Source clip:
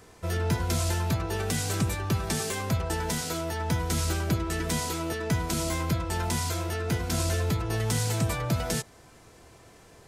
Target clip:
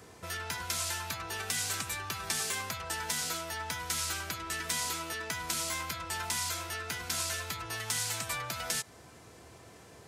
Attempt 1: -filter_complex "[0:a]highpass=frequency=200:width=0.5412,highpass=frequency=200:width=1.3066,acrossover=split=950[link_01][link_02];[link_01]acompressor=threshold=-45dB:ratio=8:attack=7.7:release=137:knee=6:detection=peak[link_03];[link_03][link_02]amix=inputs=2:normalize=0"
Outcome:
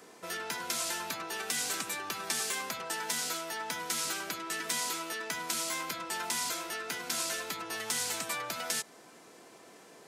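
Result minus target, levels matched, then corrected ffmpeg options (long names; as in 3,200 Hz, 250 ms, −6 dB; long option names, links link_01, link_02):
125 Hz band −11.0 dB
-filter_complex "[0:a]highpass=frequency=64:width=0.5412,highpass=frequency=64:width=1.3066,acrossover=split=950[link_01][link_02];[link_01]acompressor=threshold=-45dB:ratio=8:attack=7.7:release=137:knee=6:detection=peak[link_03];[link_03][link_02]amix=inputs=2:normalize=0"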